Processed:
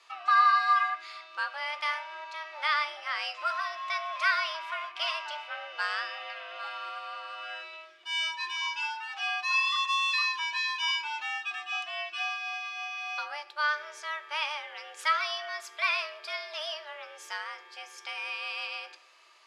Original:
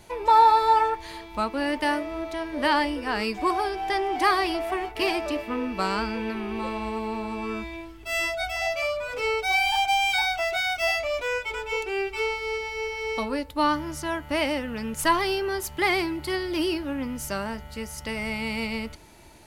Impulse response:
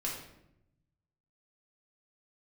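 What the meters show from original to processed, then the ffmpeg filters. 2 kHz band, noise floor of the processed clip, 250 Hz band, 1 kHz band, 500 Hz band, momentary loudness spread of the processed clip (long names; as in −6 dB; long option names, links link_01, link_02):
−2.0 dB, −52 dBFS, below −40 dB, −6.5 dB, −17.5 dB, 14 LU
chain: -filter_complex "[0:a]afreqshift=300,asuperpass=centerf=2600:order=4:qfactor=0.59,asplit=2[link_01][link_02];[1:a]atrim=start_sample=2205,adelay=16[link_03];[link_02][link_03]afir=irnorm=-1:irlink=0,volume=-15.5dB[link_04];[link_01][link_04]amix=inputs=2:normalize=0,volume=-3dB"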